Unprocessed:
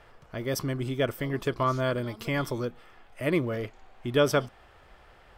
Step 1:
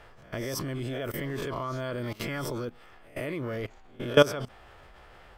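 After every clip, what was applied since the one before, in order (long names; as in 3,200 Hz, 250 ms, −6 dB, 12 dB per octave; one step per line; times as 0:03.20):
peak hold with a rise ahead of every peak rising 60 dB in 0.39 s
output level in coarse steps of 19 dB
level +5 dB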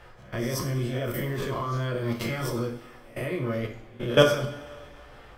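coupled-rooms reverb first 0.43 s, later 2.3 s, from −19 dB, DRR 0.5 dB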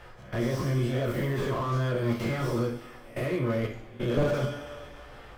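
slew-rate limiting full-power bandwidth 30 Hz
level +1.5 dB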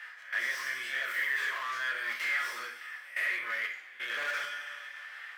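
high-pass with resonance 1,800 Hz, resonance Q 4.4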